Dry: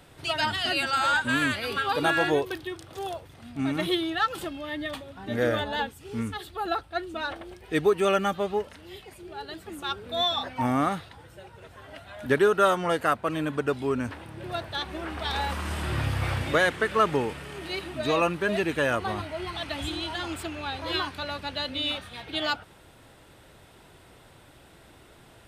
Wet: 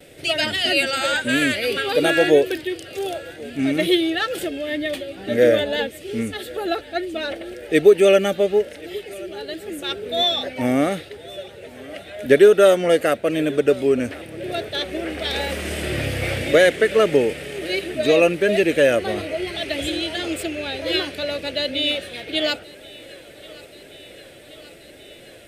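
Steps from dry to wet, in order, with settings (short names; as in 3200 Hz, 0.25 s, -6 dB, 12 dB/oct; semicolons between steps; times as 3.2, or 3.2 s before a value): gate with hold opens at -47 dBFS; EQ curve 110 Hz 0 dB, 570 Hz +13 dB, 1000 Hz -10 dB, 2100 Hz +10 dB, 4000 Hz +6 dB, 9200 Hz +9 dB; thinning echo 1.08 s, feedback 75%, high-pass 190 Hz, level -21.5 dB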